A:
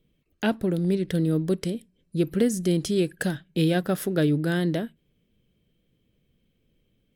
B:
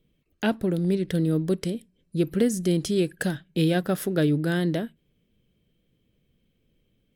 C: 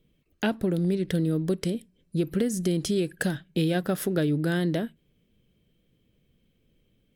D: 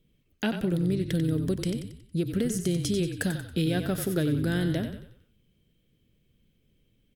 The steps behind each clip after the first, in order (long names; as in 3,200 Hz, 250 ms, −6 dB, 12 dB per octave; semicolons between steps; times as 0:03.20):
no processing that can be heard
downward compressor 5 to 1, threshold −23 dBFS, peak gain reduction 6.5 dB; level +1.5 dB
parametric band 730 Hz −4.5 dB 2.7 octaves; on a send: echo with shifted repeats 92 ms, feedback 43%, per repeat −36 Hz, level −8 dB